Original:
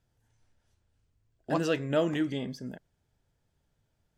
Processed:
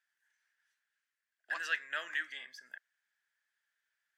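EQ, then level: resonant high-pass 1.7 kHz, resonance Q 5.6; -6.0 dB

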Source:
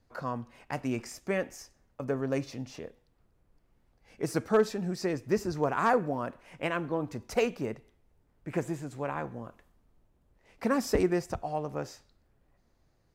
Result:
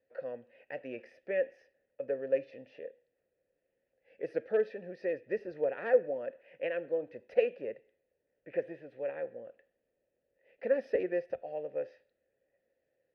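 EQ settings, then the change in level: boxcar filter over 6 samples; vowel filter e; +6.0 dB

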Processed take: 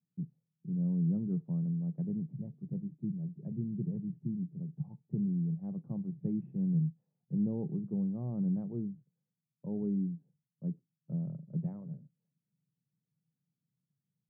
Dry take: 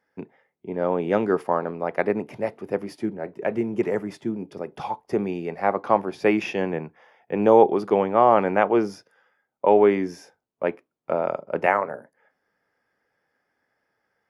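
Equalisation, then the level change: Butterworth band-pass 150 Hz, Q 3.1; +8.5 dB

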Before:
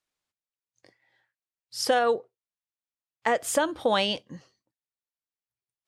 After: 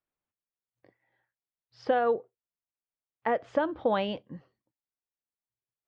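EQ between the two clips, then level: distance through air 170 m; tape spacing loss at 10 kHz 30 dB; 0.0 dB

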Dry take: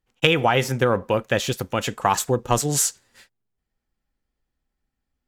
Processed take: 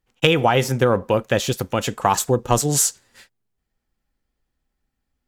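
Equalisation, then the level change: dynamic bell 2 kHz, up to -4 dB, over -34 dBFS, Q 0.86; +3.0 dB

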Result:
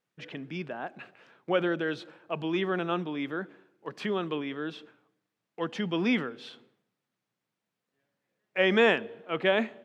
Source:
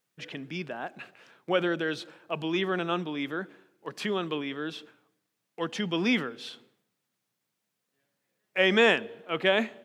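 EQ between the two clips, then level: low-pass 2.5 kHz 6 dB/octave; 0.0 dB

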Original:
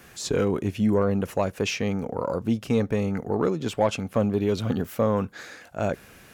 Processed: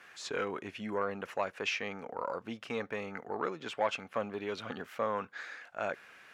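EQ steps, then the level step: band-pass filter 1.7 kHz, Q 0.95; -1.0 dB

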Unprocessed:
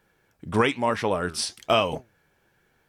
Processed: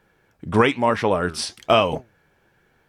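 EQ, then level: treble shelf 4.3 kHz -7 dB; +5.0 dB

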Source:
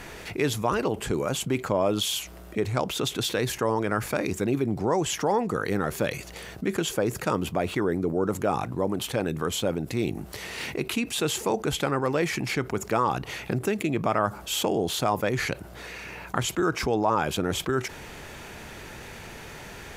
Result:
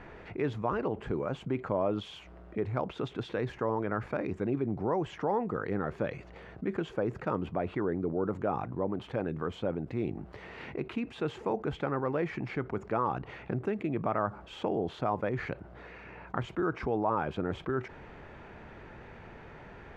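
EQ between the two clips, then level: low-pass 1.7 kHz 12 dB/octave; -5.5 dB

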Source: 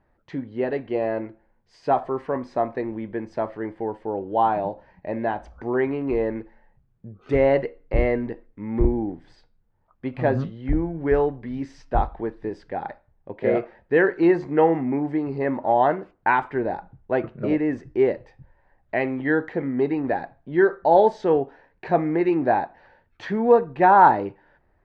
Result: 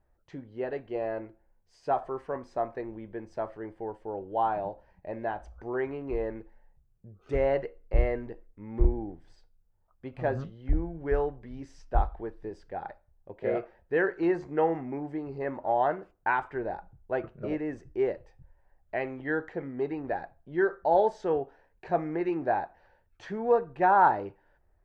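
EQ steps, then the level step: ten-band graphic EQ 125 Hz -7 dB, 250 Hz -11 dB, 500 Hz -4 dB, 1 kHz -7 dB, 2 kHz -9 dB, 4 kHz -8 dB; dynamic bell 1.5 kHz, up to +4 dB, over -44 dBFS, Q 0.98; 0.0 dB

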